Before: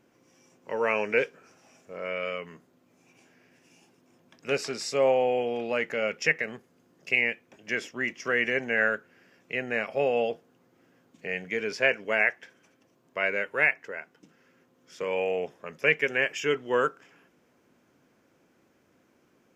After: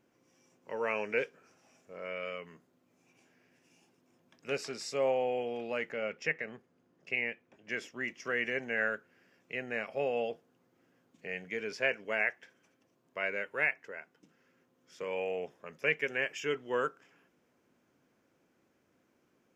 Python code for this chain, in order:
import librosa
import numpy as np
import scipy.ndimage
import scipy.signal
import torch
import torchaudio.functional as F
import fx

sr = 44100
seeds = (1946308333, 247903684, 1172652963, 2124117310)

y = fx.lowpass(x, sr, hz=3000.0, slope=6, at=(5.9, 7.7))
y = F.gain(torch.from_numpy(y), -7.0).numpy()